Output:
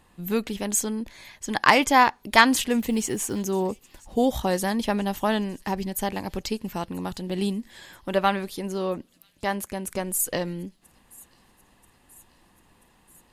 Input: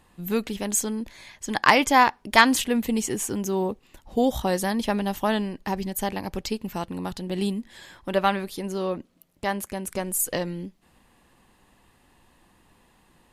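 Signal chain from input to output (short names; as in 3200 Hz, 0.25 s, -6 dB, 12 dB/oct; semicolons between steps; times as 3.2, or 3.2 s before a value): 2.79–3.43 block floating point 7-bit; thin delay 0.984 s, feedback 63%, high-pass 4700 Hz, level -22 dB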